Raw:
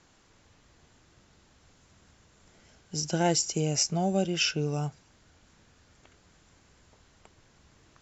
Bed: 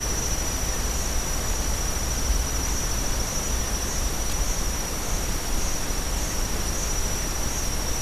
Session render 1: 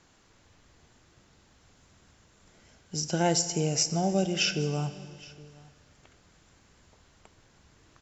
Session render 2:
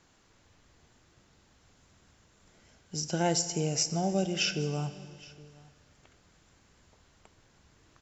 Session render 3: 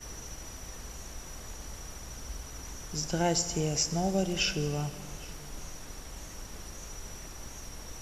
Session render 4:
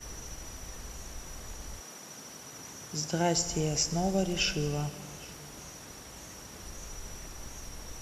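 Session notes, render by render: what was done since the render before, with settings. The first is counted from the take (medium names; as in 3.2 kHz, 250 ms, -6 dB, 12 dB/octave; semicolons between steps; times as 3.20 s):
delay 817 ms -23 dB; Schroeder reverb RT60 2 s, combs from 32 ms, DRR 12 dB
trim -2.5 dB
add bed -17 dB
1.79–3.36 s: high-pass 190 Hz -> 72 Hz 24 dB/octave; 4.89–6.63 s: high-pass 86 Hz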